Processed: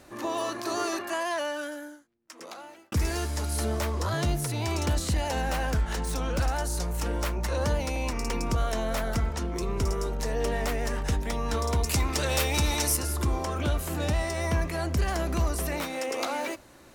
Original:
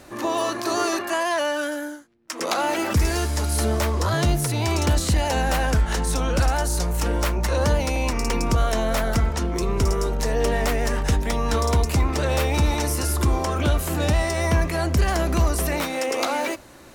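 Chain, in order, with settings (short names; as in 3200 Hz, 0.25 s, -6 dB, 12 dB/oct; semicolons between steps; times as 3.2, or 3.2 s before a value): 1.31–2.92 fade out; 5.32–6.55 self-modulated delay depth 0.051 ms; 11.84–12.97 high shelf 2200 Hz +10.5 dB; gain -6.5 dB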